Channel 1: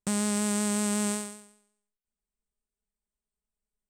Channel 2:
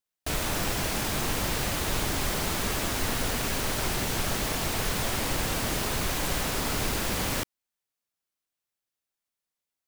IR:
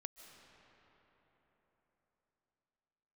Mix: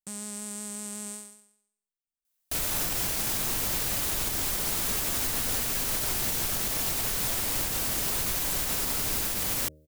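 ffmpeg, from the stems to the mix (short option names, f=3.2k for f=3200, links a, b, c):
-filter_complex "[0:a]volume=-14dB[a];[1:a]bandreject=f=77.03:t=h:w=4,bandreject=f=154.06:t=h:w=4,bandreject=f=231.09:t=h:w=4,bandreject=f=308.12:t=h:w=4,bandreject=f=385.15:t=h:w=4,bandreject=f=462.18:t=h:w=4,bandreject=f=539.21:t=h:w=4,bandreject=f=616.24:t=h:w=4,adelay=2250,volume=-1dB[b];[a][b]amix=inputs=2:normalize=0,crystalizer=i=2:c=0,alimiter=limit=-18.5dB:level=0:latency=1:release=167"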